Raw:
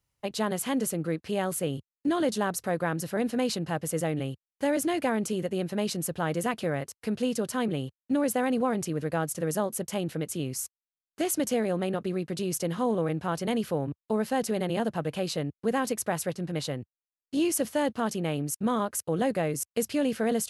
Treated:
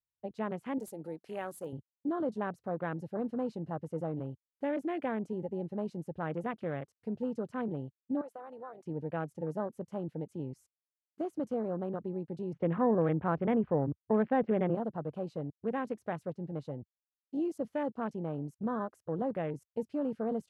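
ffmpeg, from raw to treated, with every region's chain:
-filter_complex "[0:a]asettb=1/sr,asplit=3[a][b][c];[a]atrim=end=0.784[d];[b]atrim=start=0.78:end=1.73,asetpts=PTS-STARTPTS,afade=t=in:d=0.004:c=qsin,afade=t=out:st=0.946:d=0.004:c=qsin,aemphasis=mode=production:type=riaa,acompressor=mode=upward:threshold=-30dB:ratio=2.5:attack=3.2:release=140:knee=2.83:detection=peak,bandreject=f=60:t=h:w=6,bandreject=f=120:t=h:w=6,bandreject=f=180:t=h:w=6[e];[c]atrim=start=1.726[f];[d][e]acrossfade=d=0.004:c1=hsin:c2=qsin[g];[g][f]acrossfade=d=0.004:c1=qsin:c2=hsin,asettb=1/sr,asplit=3[h][i][j];[h]atrim=end=8.214[k];[i]atrim=start=8.21:end=8.86,asetpts=PTS-STARTPTS,afade=t=in:d=0.004:c=qsin,afade=t=out:st=0.646:d=0.004:c=qsin,highpass=650,acompressor=threshold=-37dB:ratio=2:attack=3.2:release=140:knee=1:detection=peak[l];[j]atrim=start=8.856[m];[k][l]acrossfade=d=0.004:c1=hsin:c2=qsin[n];[n][m]acrossfade=d=0.004:c1=qsin:c2=hsin,asettb=1/sr,asplit=3[o][p][q];[o]atrim=end=12.534[r];[p]atrim=start=12.53:end=14.75,asetpts=PTS-STARTPTS,afade=t=in:d=0.004:c=qsin,afade=t=out:st=2.216:d=0.004:c=qsin,lowpass=f=2.5k:w=0.5412,lowpass=f=2.5k:w=1.3066,acontrast=62[s];[q]atrim=start=14.746[t];[r][s]acrossfade=d=0.004:c1=hsin:c2=qsin[u];[u][t]acrossfade=d=0.004:c1=qsin:c2=hsin,afwtdn=0.0158,deesser=1,lowpass=f=2.4k:p=1,volume=-6.5dB"

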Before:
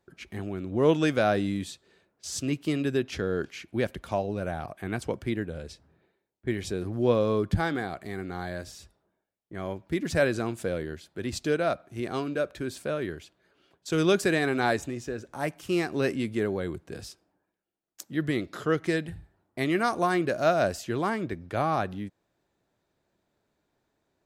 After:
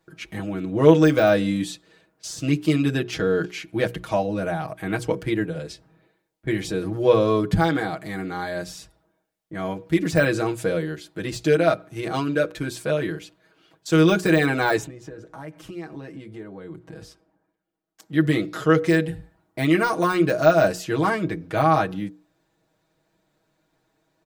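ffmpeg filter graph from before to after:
-filter_complex "[0:a]asettb=1/sr,asplit=3[a][b][c];[a]atrim=end=14.864[d];[b]atrim=start=14.86:end=18.13,asetpts=PTS-STARTPTS,afade=t=in:d=0.004:c=qsin,afade=t=out:st=3.266:d=0.004:c=qsin,bandreject=f=2.6k:w=19,acompressor=threshold=-41dB:ratio=4:attack=3.2:release=140:knee=1:detection=peak,highshelf=f=2.9k:g=-11.5[e];[c]atrim=start=18.126[f];[d][e]acrossfade=d=0.004:c1=hsin:c2=qsin[g];[g][f]acrossfade=d=0.004:c1=qsin:c2=hsin,deesser=0.85,bandreject=f=60:t=h:w=6,bandreject=f=120:t=h:w=6,bandreject=f=180:t=h:w=6,bandreject=f=240:t=h:w=6,bandreject=f=300:t=h:w=6,bandreject=f=360:t=h:w=6,bandreject=f=420:t=h:w=6,bandreject=f=480:t=h:w=6,aecho=1:1:6.3:0.9,volume=4.5dB"

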